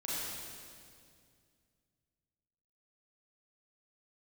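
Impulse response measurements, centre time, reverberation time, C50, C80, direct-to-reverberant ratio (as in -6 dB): 0.158 s, 2.2 s, -4.5 dB, -2.0 dB, -8.5 dB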